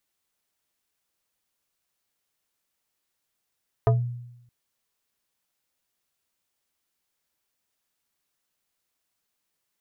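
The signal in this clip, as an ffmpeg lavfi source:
-f lavfi -i "aevalsrc='0.2*pow(10,-3*t/0.88)*sin(2*PI*121*t+1.4*pow(10,-3*t/0.22)*sin(2*PI*4.59*121*t))':d=0.62:s=44100"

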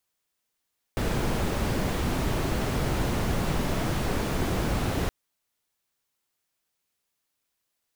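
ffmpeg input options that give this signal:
-f lavfi -i "anoisesrc=c=brown:a=0.234:d=4.12:r=44100:seed=1"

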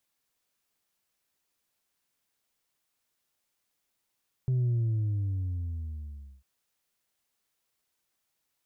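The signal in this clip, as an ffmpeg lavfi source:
-f lavfi -i "aevalsrc='0.0631*clip((1.95-t)/1.77,0,1)*tanh(1.26*sin(2*PI*130*1.95/log(65/130)*(exp(log(65/130)*t/1.95)-1)))/tanh(1.26)':d=1.95:s=44100"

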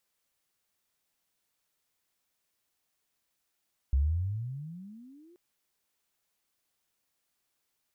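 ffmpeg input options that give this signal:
-f lavfi -i "aevalsrc='pow(10,(-21-33.5*t/1.43)/20)*sin(2*PI*64.2*1.43/(30*log(2)/12)*(exp(30*log(2)/12*t/1.43)-1))':d=1.43:s=44100"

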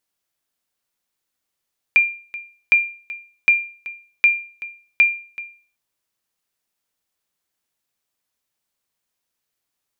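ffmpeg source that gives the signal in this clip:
-f lavfi -i "aevalsrc='0.501*(sin(2*PI*2390*mod(t,0.76))*exp(-6.91*mod(t,0.76)/0.41)+0.126*sin(2*PI*2390*max(mod(t,0.76)-0.38,0))*exp(-6.91*max(mod(t,0.76)-0.38,0)/0.41))':d=3.8:s=44100"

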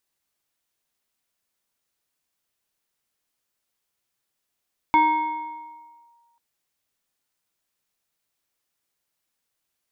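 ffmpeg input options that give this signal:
-f lavfi -i "aevalsrc='0.251*pow(10,-3*t/1.65)*sin(2*PI*938*t+0.59*clip(1-t/1.23,0,1)*sin(2*PI*1.33*938*t))':d=1.44:s=44100"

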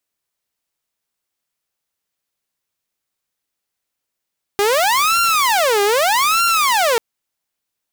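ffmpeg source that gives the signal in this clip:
-f lavfi -i "aevalsrc='0.299*(2*mod((891.5*t-488.5/(2*PI*0.81)*sin(2*PI*0.81*t)),1)-1)':d=2.39:s=44100"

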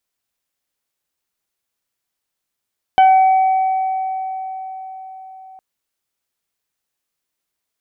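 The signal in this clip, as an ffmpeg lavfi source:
-f lavfi -i "aevalsrc='0.501*pow(10,-3*t/4.95)*sin(2*PI*759*t)+0.0708*pow(10,-3*t/0.56)*sin(2*PI*1518*t)+0.0631*pow(10,-3*t/3.05)*sin(2*PI*2277*t)+0.0708*pow(10,-3*t/0.21)*sin(2*PI*3036*t)':d=2.61:s=44100"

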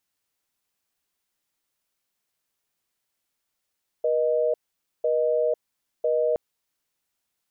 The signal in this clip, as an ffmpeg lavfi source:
-f lavfi -i "aevalsrc='0.075*(sin(2*PI*480*t)+sin(2*PI*620*t))*clip(min(mod(t,1),0.5-mod(t,1))/0.005,0,1)':d=2.32:s=44100"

